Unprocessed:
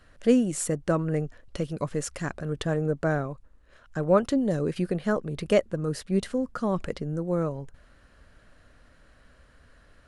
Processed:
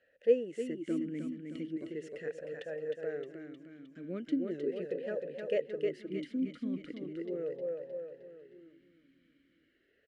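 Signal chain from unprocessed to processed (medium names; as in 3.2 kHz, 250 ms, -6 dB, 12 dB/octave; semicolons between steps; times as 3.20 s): 2.61–4.04 s: bass shelf 380 Hz -6.5 dB; feedback delay 310 ms, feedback 54%, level -5 dB; talking filter e-i 0.38 Hz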